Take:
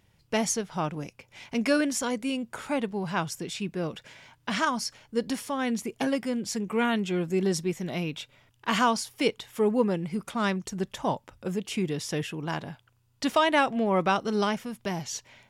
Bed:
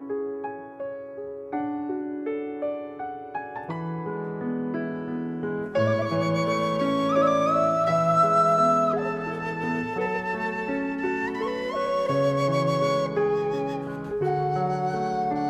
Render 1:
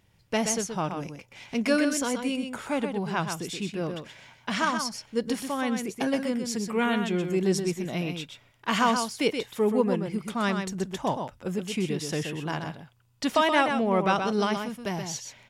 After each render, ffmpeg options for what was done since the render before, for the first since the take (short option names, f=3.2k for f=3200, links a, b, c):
-af "aecho=1:1:126:0.473"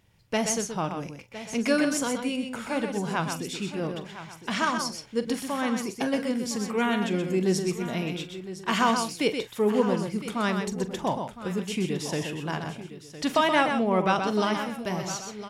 -filter_complex "[0:a]asplit=2[a][b];[b]adelay=43,volume=-14dB[c];[a][c]amix=inputs=2:normalize=0,aecho=1:1:1010:0.211"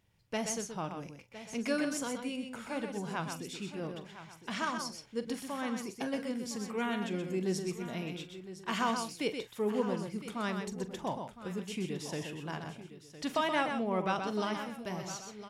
-af "volume=-8.5dB"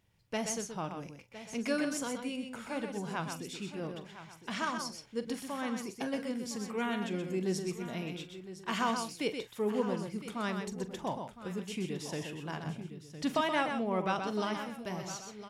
-filter_complex "[0:a]asettb=1/sr,asplit=3[a][b][c];[a]atrim=end=12.654[d];[b]atrim=start=12.65:end=13.41,asetpts=PTS-STARTPTS,afade=t=in:d=0.004:c=qsin,afade=t=out:st=0.756:d=0.004:c=qsin,equalizer=f=160:w=0.88:g=8[e];[c]atrim=start=13.406[f];[d][e]acrossfade=d=0.004:c1=hsin:c2=qsin[g];[g][f]acrossfade=d=0.004:c1=qsin:c2=hsin"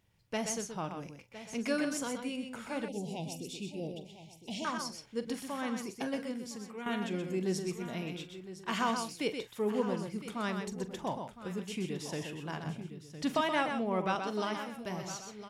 -filter_complex "[0:a]asettb=1/sr,asplit=3[a][b][c];[a]atrim=end=2.884[d];[b]atrim=start=2.88:end=4.65,asetpts=PTS-STARTPTS,afade=t=in:d=0.004:c=qsin,afade=t=out:st=1.766:d=0.004:c=qsin,asuperstop=centerf=1400:order=8:qfactor=0.82[e];[c]atrim=start=4.646[f];[d][e]acrossfade=d=0.004:c1=hsin:c2=qsin[g];[g][f]acrossfade=d=0.004:c1=qsin:c2=hsin,asettb=1/sr,asplit=3[h][i][j];[h]atrim=end=14.154[k];[i]atrim=start=14.15:end=14.75,asetpts=PTS-STARTPTS,afade=t=in:d=0.004:c=qsin,afade=t=out:st=0.596:d=0.004:c=qsin,highpass=190[l];[j]atrim=start=14.746[m];[k][l]acrossfade=d=0.004:c1=hsin:c2=qsin[n];[n][m]acrossfade=d=0.004:c1=qsin:c2=hsin,asplit=2[o][p];[o]atrim=end=6.86,asetpts=PTS-STARTPTS,afade=t=out:st=6.08:d=0.78:silence=0.316228[q];[p]atrim=start=6.86,asetpts=PTS-STARTPTS,afade=t=in:d=0.004:c=hsin:silence=0.316228[r];[q][r]concat=n=2:v=0:a=1"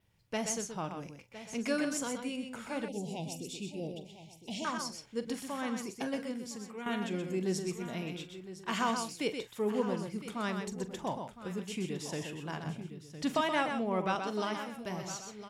-af "adynamicequalizer=threshold=0.00126:dfrequency=7400:dqfactor=3.9:tfrequency=7400:tqfactor=3.9:attack=5:release=100:ratio=0.375:range=2:mode=boostabove:tftype=bell"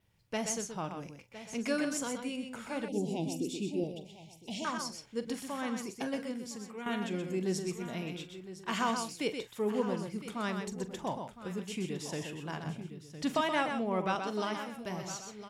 -filter_complex "[0:a]asettb=1/sr,asplit=3[a][b][c];[a]atrim=end=2.924[d];[b]atrim=start=2.92:end=3.84,asetpts=PTS-STARTPTS,afade=t=in:d=0.004:c=qsin,afade=t=out:st=0.916:d=0.004:c=qsin,equalizer=f=300:t=o:w=0.81:g=13[e];[c]atrim=start=3.836[f];[d][e]acrossfade=d=0.004:c1=hsin:c2=qsin[g];[g][f]acrossfade=d=0.004:c1=qsin:c2=hsin"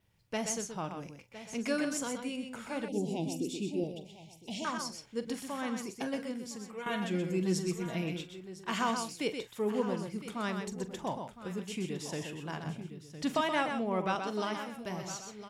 -filter_complex "[0:a]asettb=1/sr,asplit=3[a][b][c];[a]atrim=end=6.724[d];[b]atrim=start=6.72:end=8.21,asetpts=PTS-STARTPTS,afade=t=in:d=0.004:c=qsin,afade=t=out:st=1.486:d=0.004:c=qsin,aecho=1:1:6.1:0.73,atrim=end_sample=65709[e];[c]atrim=start=8.206[f];[d][e]acrossfade=d=0.004:c1=hsin:c2=qsin[g];[g][f]acrossfade=d=0.004:c1=qsin:c2=hsin"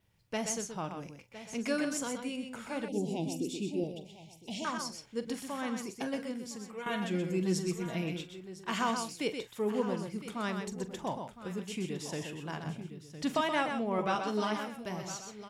-filter_complex "[0:a]asettb=1/sr,asplit=3[a][b][c];[a]atrim=end=13.974[d];[b]atrim=start=13.97:end=14.68,asetpts=PTS-STARTPTS,afade=t=in:d=0.004:c=qsin,afade=t=out:st=0.706:d=0.004:c=qsin,asplit=2[e][f];[f]adelay=14,volume=-4dB[g];[e][g]amix=inputs=2:normalize=0,atrim=end_sample=31311[h];[c]atrim=start=14.676[i];[d][h]acrossfade=d=0.004:c1=hsin:c2=qsin[j];[j][i]acrossfade=d=0.004:c1=qsin:c2=hsin"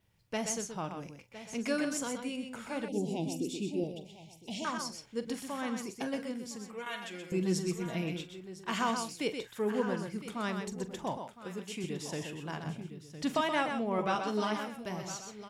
-filter_complex "[0:a]asettb=1/sr,asplit=3[a][b][c];[a]atrim=end=6.854[d];[b]atrim=start=6.85:end=7.32,asetpts=PTS-STARTPTS,afade=t=in:d=0.004:c=qsin,afade=t=out:st=0.466:d=0.004:c=qsin,highpass=f=1.3k:p=1[e];[c]atrim=start=7.316[f];[d][e]acrossfade=d=0.004:c1=hsin:c2=qsin[g];[g][f]acrossfade=d=0.004:c1=qsin:c2=hsin,asettb=1/sr,asplit=3[h][i][j];[h]atrim=end=9.444[k];[i]atrim=start=9.44:end=10.2,asetpts=PTS-STARTPTS,afade=t=in:d=0.004:c=qsin,afade=t=out:st=0.756:d=0.004:c=qsin,equalizer=f=1.6k:w=4.3:g=10[l];[j]atrim=start=10.196[m];[k][l]acrossfade=d=0.004:c1=hsin:c2=qsin[n];[n][m]acrossfade=d=0.004:c1=qsin:c2=hsin,asettb=1/sr,asplit=3[o][p][q];[o]atrim=end=11.174[r];[p]atrim=start=11.17:end=11.84,asetpts=PTS-STARTPTS,afade=t=in:d=0.004:c=qsin,afade=t=out:st=0.666:d=0.004:c=qsin,highpass=f=240:p=1[s];[q]atrim=start=11.836[t];[r][s]acrossfade=d=0.004:c1=hsin:c2=qsin[u];[u][t]acrossfade=d=0.004:c1=qsin:c2=hsin"